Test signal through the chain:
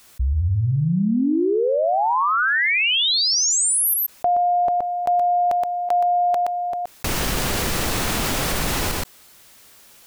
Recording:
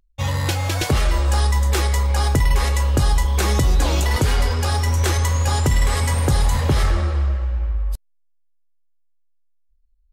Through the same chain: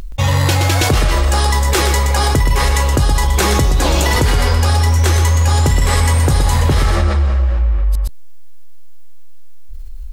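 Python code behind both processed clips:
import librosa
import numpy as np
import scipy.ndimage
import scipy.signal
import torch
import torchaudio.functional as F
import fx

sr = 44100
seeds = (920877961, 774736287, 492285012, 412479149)

y = x + 10.0 ** (-6.5 / 20.0) * np.pad(x, (int(122 * sr / 1000.0), 0))[:len(x)]
y = fx.env_flatten(y, sr, amount_pct=70)
y = y * librosa.db_to_amplitude(1.5)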